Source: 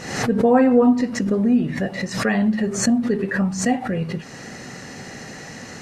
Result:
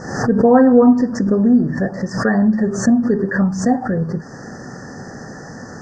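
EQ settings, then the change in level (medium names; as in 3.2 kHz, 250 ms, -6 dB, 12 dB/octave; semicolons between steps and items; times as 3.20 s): Chebyshev band-stop 1.8–4.7 kHz, order 5; distance through air 110 m; +5.0 dB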